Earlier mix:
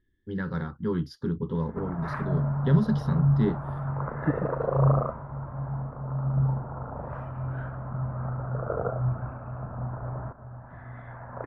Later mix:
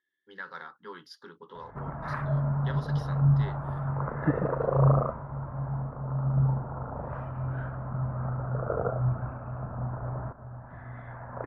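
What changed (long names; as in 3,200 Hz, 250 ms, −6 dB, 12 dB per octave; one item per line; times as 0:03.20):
speech: add high-pass filter 920 Hz 12 dB per octave
master: add high-shelf EQ 8,300 Hz −3.5 dB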